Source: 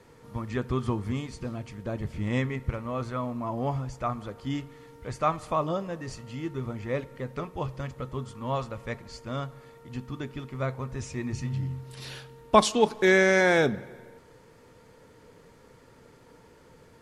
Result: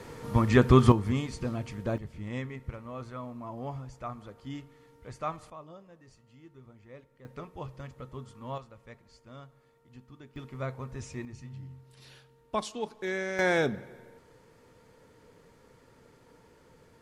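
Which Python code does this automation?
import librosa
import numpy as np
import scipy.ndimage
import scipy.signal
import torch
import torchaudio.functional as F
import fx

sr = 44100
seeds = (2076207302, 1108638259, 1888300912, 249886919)

y = fx.gain(x, sr, db=fx.steps((0.0, 10.0), (0.92, 2.0), (1.98, -8.5), (5.5, -19.5), (7.25, -8.0), (8.58, -15.0), (10.36, -5.0), (11.25, -13.0), (13.39, -4.0)))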